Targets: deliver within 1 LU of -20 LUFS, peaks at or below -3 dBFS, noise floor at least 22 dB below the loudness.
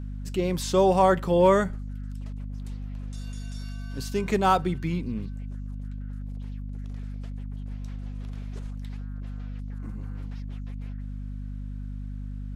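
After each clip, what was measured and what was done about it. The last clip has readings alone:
hum 50 Hz; harmonics up to 250 Hz; hum level -32 dBFS; loudness -29.5 LUFS; peak -9.0 dBFS; loudness target -20.0 LUFS
-> de-hum 50 Hz, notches 5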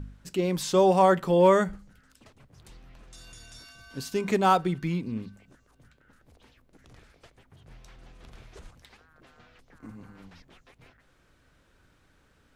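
hum none; loudness -24.0 LUFS; peak -9.5 dBFS; loudness target -20.0 LUFS
-> gain +4 dB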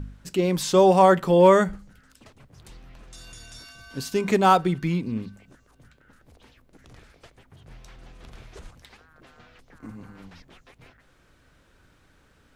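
loudness -20.0 LUFS; peak -5.5 dBFS; noise floor -61 dBFS

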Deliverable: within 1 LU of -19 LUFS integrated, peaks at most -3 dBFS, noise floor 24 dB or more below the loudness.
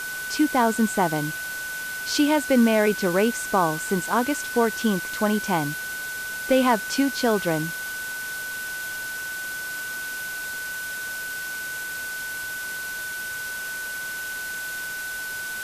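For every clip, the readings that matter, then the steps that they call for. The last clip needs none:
steady tone 1500 Hz; tone level -30 dBFS; noise floor -32 dBFS; noise floor target -50 dBFS; loudness -25.5 LUFS; peak -9.0 dBFS; loudness target -19.0 LUFS
-> notch 1500 Hz, Q 30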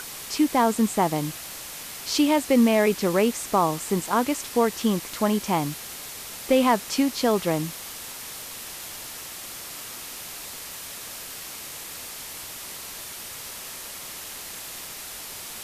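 steady tone none; noise floor -38 dBFS; noise floor target -51 dBFS
-> noise print and reduce 13 dB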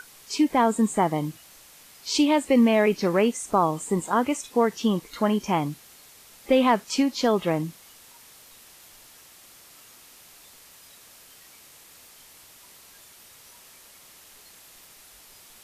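noise floor -51 dBFS; loudness -23.5 LUFS; peak -10.0 dBFS; loudness target -19.0 LUFS
-> gain +4.5 dB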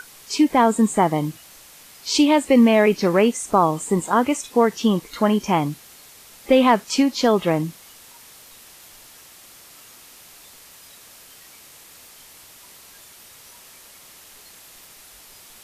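loudness -19.0 LUFS; peak -5.5 dBFS; noise floor -47 dBFS

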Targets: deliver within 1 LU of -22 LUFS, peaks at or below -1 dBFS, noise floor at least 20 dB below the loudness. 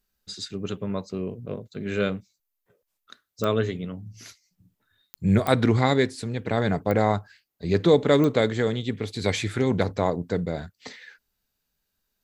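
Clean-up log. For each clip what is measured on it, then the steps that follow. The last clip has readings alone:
clicks 5; loudness -25.0 LUFS; peak -5.0 dBFS; loudness target -22.0 LUFS
-> de-click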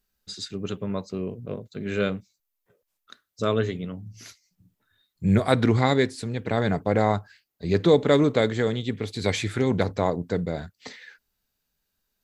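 clicks 0; loudness -25.0 LUFS; peak -5.0 dBFS; loudness target -22.0 LUFS
-> gain +3 dB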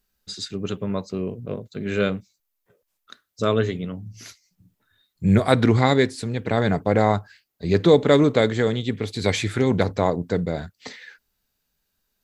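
loudness -22.0 LUFS; peak -2.0 dBFS; noise floor -77 dBFS

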